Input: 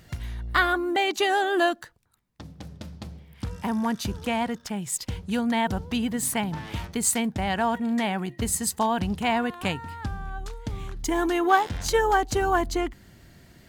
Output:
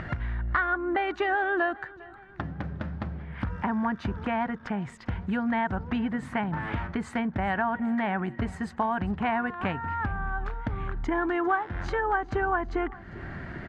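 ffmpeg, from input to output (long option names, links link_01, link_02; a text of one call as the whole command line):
ffmpeg -i in.wav -af "acompressor=mode=upward:threshold=-25dB:ratio=2.5,lowpass=frequency=1600:width_type=q:width=2.1,acompressor=threshold=-24dB:ratio=4,bandreject=frequency=470:width=12,aecho=1:1:400|800|1200|1600:0.0841|0.0471|0.0264|0.0148" out.wav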